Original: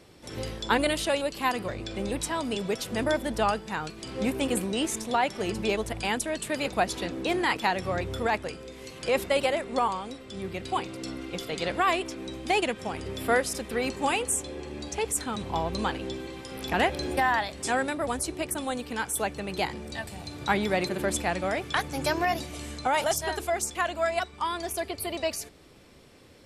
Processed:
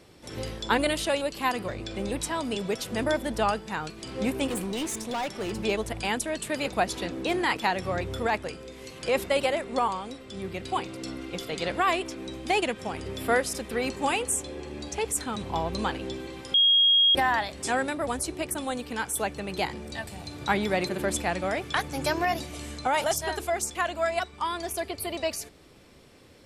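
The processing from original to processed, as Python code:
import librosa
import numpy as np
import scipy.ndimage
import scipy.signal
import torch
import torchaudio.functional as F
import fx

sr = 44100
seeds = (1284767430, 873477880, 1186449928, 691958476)

y = fx.clip_hard(x, sr, threshold_db=-27.5, at=(4.47, 5.65))
y = fx.edit(y, sr, fx.bleep(start_s=16.54, length_s=0.61, hz=3270.0, db=-16.5), tone=tone)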